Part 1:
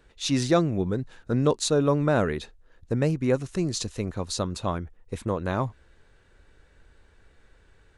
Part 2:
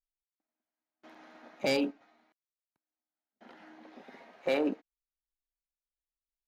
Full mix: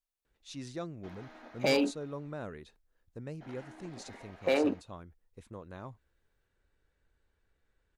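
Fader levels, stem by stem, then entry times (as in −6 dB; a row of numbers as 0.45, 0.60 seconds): −18.5, +1.5 decibels; 0.25, 0.00 seconds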